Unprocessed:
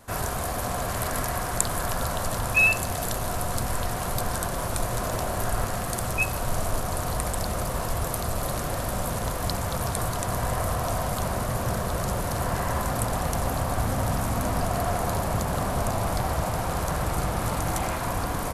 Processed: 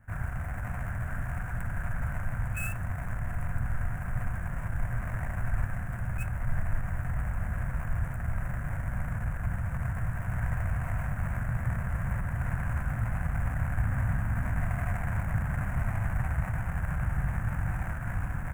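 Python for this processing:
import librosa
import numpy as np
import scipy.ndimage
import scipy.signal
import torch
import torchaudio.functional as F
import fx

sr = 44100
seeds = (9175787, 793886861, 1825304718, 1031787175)

y = scipy.ndimage.median_filter(x, 41, mode='constant')
y = fx.curve_eq(y, sr, hz=(140.0, 420.0, 1600.0, 4300.0, 7800.0), db=(0, -21, 10, -26, -1))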